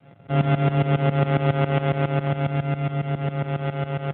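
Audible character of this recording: a buzz of ramps at a fixed pitch in blocks of 64 samples; tremolo saw up 7.3 Hz, depth 90%; a quantiser's noise floor 12-bit, dither none; AMR-NB

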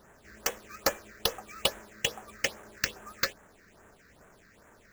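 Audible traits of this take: aliases and images of a low sample rate 8.9 kHz, jitter 20%; phasing stages 6, 2.4 Hz, lowest notch 800–4600 Hz

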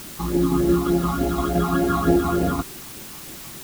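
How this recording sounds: phasing stages 12, 3.4 Hz, lowest notch 510–1200 Hz; tremolo saw down 5.8 Hz, depth 40%; a quantiser's noise floor 8-bit, dither triangular

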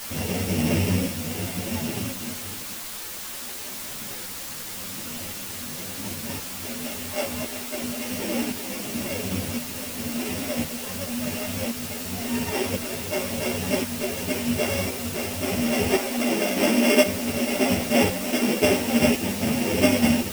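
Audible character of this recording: a buzz of ramps at a fixed pitch in blocks of 16 samples; tremolo saw up 0.94 Hz, depth 65%; a quantiser's noise floor 6-bit, dither triangular; a shimmering, thickened sound

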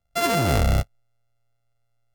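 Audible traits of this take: a buzz of ramps at a fixed pitch in blocks of 64 samples; AAC

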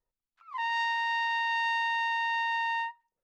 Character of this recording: noise floor -91 dBFS; spectral tilt -8.5 dB/octave

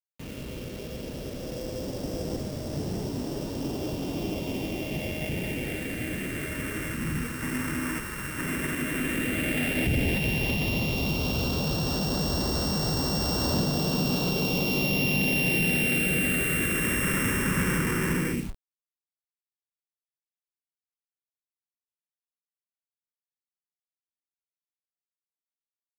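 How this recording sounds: a buzz of ramps at a fixed pitch in blocks of 16 samples; phasing stages 4, 0.097 Hz, lowest notch 690–2300 Hz; a quantiser's noise floor 8-bit, dither none

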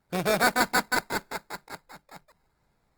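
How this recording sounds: aliases and images of a low sample rate 3 kHz, jitter 0%; Opus

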